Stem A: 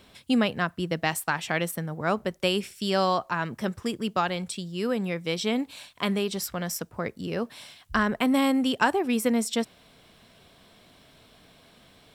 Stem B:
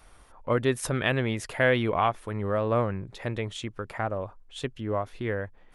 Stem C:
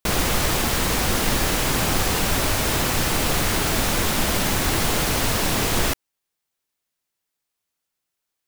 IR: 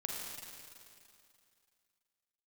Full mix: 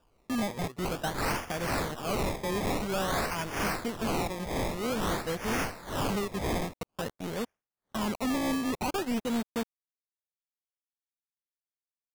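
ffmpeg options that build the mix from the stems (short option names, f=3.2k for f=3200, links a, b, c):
-filter_complex "[0:a]lowpass=f=1.4k:w=0.5412,lowpass=f=1.4k:w=1.3066,acrusher=bits=4:mix=0:aa=0.5,tremolo=f=4.7:d=0.51,volume=1dB[a];[1:a]acompressor=threshold=-31dB:ratio=2,volume=-16dB[b];[2:a]aeval=exprs='val(0)*pow(10,-26*(0.5-0.5*cos(2*PI*2.1*n/s))/20)':c=same,adelay=800,volume=-4.5dB[c];[a][b][c]amix=inputs=3:normalize=0,equalizer=f=9k:w=0.34:g=10.5,acrusher=samples=21:mix=1:aa=0.000001:lfo=1:lforange=21:lforate=0.5,asoftclip=type=tanh:threshold=-26.5dB"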